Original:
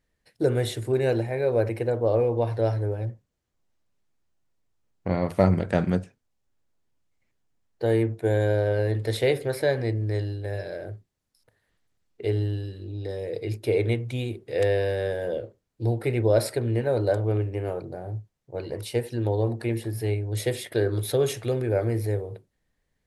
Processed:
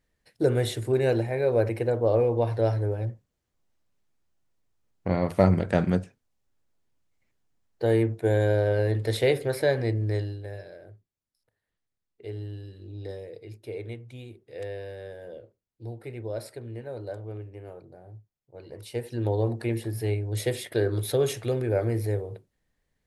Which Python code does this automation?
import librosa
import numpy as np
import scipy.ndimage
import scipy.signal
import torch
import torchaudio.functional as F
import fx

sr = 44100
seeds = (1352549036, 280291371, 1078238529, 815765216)

y = fx.gain(x, sr, db=fx.line((10.13, 0.0), (10.79, -12.0), (12.23, -12.0), (13.1, -4.0), (13.39, -13.0), (18.55, -13.0), (19.25, -1.0)))